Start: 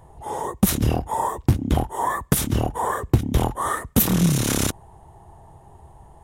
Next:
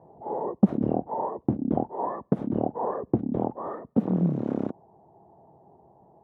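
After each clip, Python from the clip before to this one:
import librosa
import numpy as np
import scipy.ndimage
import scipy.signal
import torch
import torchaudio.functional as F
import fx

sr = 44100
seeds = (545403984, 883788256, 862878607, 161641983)

y = scipy.signal.sosfilt(scipy.signal.cheby1(2, 1.0, [200.0, 670.0], 'bandpass', fs=sr, output='sos'), x)
y = fx.rider(y, sr, range_db=5, speed_s=2.0)
y = y * 10.0 ** (-1.0 / 20.0)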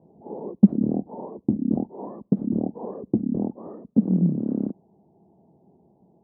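y = fx.curve_eq(x, sr, hz=(130.0, 200.0, 1900.0), db=(0, 10, -18))
y = y * 10.0 ** (-3.5 / 20.0)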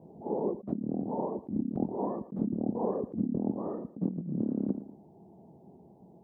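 y = fx.echo_feedback(x, sr, ms=114, feedback_pct=33, wet_db=-16)
y = fx.over_compress(y, sr, threshold_db=-30.0, ratio=-1.0)
y = y * 10.0 ** (-2.5 / 20.0)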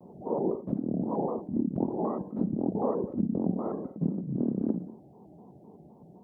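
y = fx.echo_feedback(x, sr, ms=60, feedback_pct=32, wet_db=-10.0)
y = fx.vibrato_shape(y, sr, shape='square', rate_hz=3.9, depth_cents=160.0)
y = y * 10.0 ** (2.0 / 20.0)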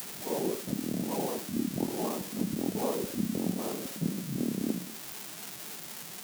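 y = x + 0.5 * 10.0 ** (-21.5 / 20.0) * np.diff(np.sign(x), prepend=np.sign(x[:1]))
y = y * 10.0 ** (-3.0 / 20.0)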